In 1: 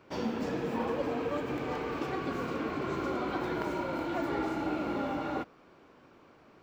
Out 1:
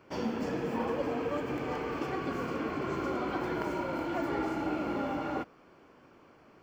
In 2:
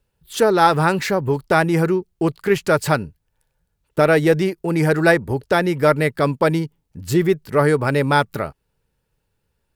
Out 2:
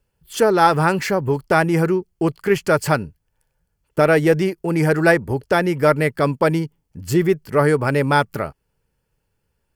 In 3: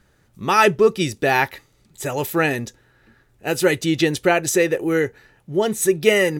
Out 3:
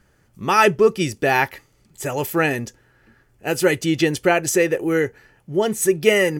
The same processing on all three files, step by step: band-stop 3.8 kHz, Q 6.8

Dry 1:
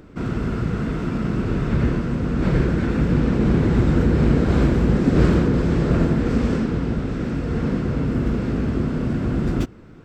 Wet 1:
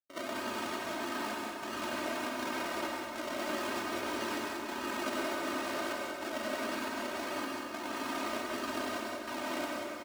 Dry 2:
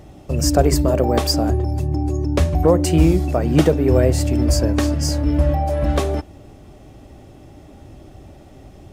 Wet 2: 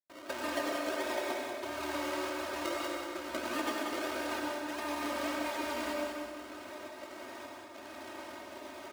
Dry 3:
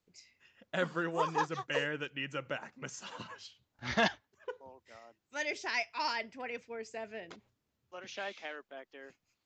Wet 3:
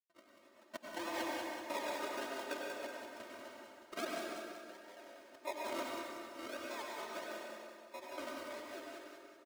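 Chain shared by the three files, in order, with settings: decimation with a swept rate 41×, swing 60% 1.6 Hz; high-pass 490 Hz 12 dB/octave; treble shelf 6.1 kHz -6.5 dB; compression 5:1, threshold -37 dBFS; trance gate ".xxxxxxx.xxxxx.." 157 bpm -60 dB; comb 3.2 ms, depth 86%; feedback delay 188 ms, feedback 47%, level -6 dB; plate-style reverb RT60 1.7 s, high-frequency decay 0.75×, pre-delay 80 ms, DRR -1 dB; trim -2 dB

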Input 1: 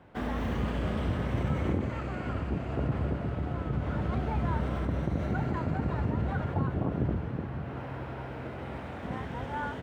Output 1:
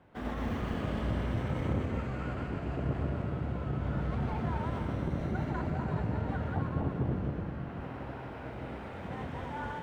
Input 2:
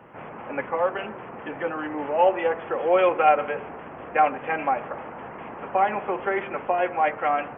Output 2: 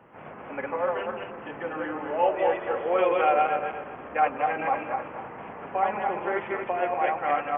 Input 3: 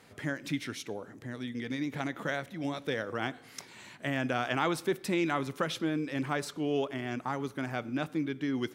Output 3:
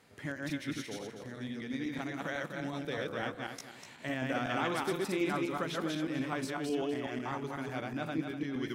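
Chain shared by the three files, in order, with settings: backward echo that repeats 124 ms, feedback 52%, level -1 dB; trim -5.5 dB

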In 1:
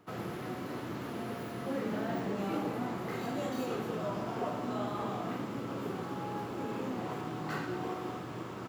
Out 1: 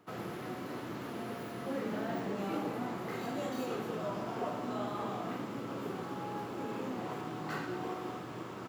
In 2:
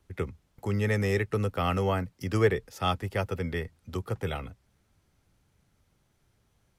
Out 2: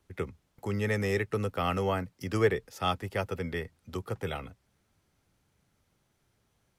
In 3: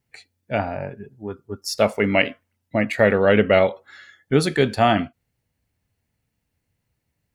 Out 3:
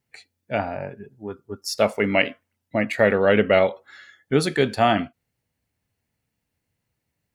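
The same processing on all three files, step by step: bass shelf 98 Hz -7.5 dB; trim -1 dB

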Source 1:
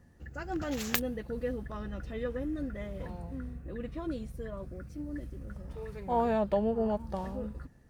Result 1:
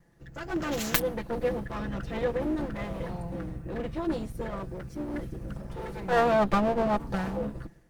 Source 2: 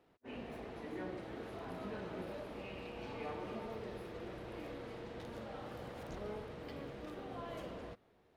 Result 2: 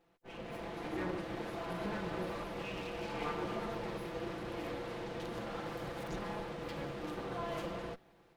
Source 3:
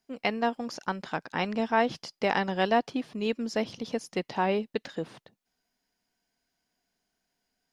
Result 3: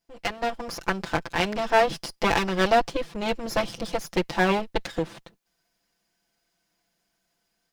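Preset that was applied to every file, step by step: comb filter that takes the minimum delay 5.9 ms; level rider gain up to 7 dB

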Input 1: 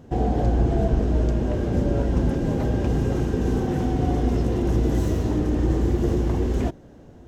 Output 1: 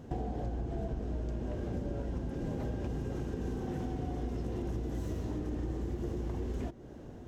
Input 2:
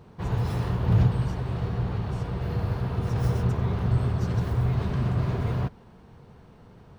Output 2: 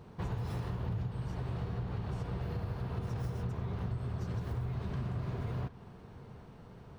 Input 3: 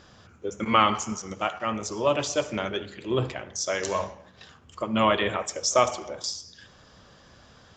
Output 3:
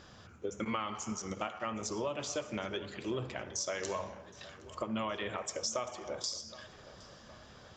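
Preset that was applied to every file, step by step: compression 8:1, threshold -31 dBFS; tape echo 767 ms, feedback 62%, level -17 dB, low-pass 3.4 kHz; trim -2 dB

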